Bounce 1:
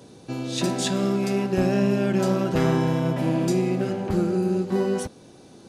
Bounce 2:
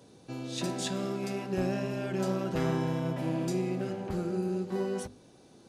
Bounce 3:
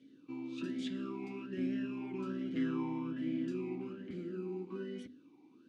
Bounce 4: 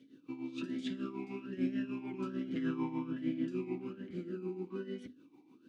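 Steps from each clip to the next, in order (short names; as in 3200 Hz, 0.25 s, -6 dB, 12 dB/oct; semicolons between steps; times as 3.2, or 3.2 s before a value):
notches 50/100/150/200/250/300/350/400 Hz; gain -8 dB
vowel sweep i-u 1.2 Hz; gain +5 dB
tremolo 6.7 Hz, depth 69%; gain +3.5 dB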